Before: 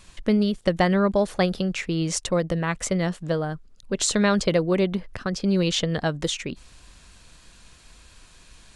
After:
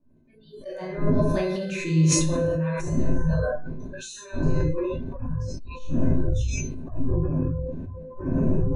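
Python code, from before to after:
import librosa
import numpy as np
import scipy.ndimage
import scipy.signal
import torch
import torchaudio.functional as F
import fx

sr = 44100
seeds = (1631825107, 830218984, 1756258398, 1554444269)

y = fx.doppler_pass(x, sr, speed_mps=10, closest_m=2.7, pass_at_s=1.83)
y = fx.dmg_wind(y, sr, seeds[0], corner_hz=190.0, level_db=-30.0)
y = fx.peak_eq(y, sr, hz=320.0, db=9.0, octaves=1.4)
y = fx.comb_fb(y, sr, f0_hz=510.0, decay_s=0.62, harmonics='all', damping=0.0, mix_pct=90)
y = fx.room_shoebox(y, sr, seeds[1], volume_m3=330.0, walls='mixed', distance_m=2.6)
y = fx.noise_reduce_blind(y, sr, reduce_db=27)
y = fx.ripple_eq(y, sr, per_octave=1.5, db=9)
y = fx.sustainer(y, sr, db_per_s=24.0)
y = F.gain(torch.from_numpy(y), 5.0).numpy()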